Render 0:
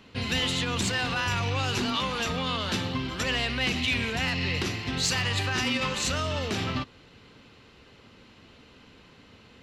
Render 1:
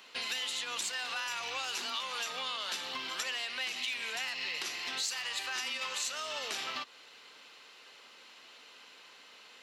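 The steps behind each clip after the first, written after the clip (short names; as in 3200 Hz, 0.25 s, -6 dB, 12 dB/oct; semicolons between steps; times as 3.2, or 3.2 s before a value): HPF 690 Hz 12 dB/oct; high shelf 4600 Hz +9 dB; compressor 4:1, threshold -35 dBFS, peak gain reduction 14 dB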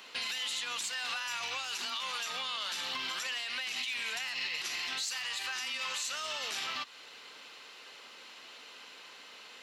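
limiter -30 dBFS, peak gain reduction 9 dB; dynamic EQ 430 Hz, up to -6 dB, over -58 dBFS, Q 0.73; gain +4 dB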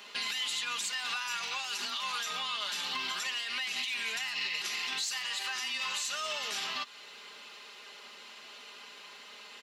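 comb 4.9 ms, depth 62%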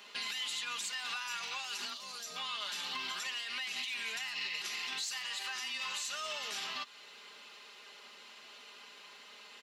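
spectral gain 1.93–2.36, 760–3900 Hz -10 dB; gain -4 dB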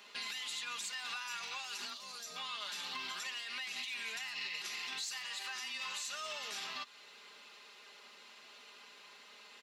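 notch 3000 Hz, Q 20; gain -2.5 dB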